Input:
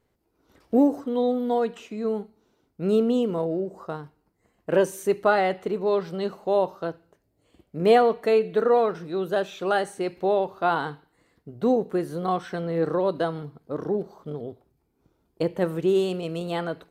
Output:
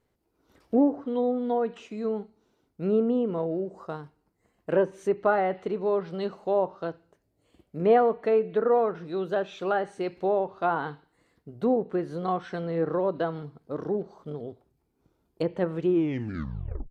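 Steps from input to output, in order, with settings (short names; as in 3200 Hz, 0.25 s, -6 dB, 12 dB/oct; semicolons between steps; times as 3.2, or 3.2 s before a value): tape stop at the end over 1.06 s; treble ducked by the level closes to 1700 Hz, closed at -18.5 dBFS; gain -2.5 dB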